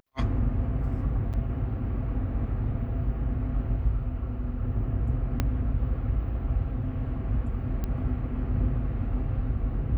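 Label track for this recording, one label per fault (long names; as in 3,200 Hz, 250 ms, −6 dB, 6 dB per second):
1.330000	1.340000	drop-out 7.6 ms
5.400000	5.400000	click −12 dBFS
7.840000	7.840000	click −19 dBFS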